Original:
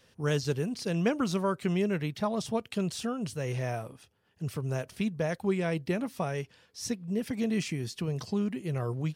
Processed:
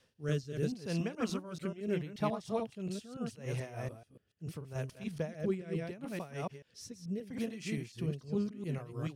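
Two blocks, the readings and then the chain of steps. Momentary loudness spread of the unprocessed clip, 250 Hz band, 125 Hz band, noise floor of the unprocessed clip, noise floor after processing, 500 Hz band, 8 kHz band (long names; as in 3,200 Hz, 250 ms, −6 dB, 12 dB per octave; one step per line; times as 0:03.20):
7 LU, −6.5 dB, −6.0 dB, −66 dBFS, −71 dBFS, −6.0 dB, −9.5 dB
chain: delay that plays each chunk backwards 144 ms, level −3 dB
amplitude tremolo 3.1 Hz, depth 81%
rotating-speaker cabinet horn 0.75 Hz
level −3 dB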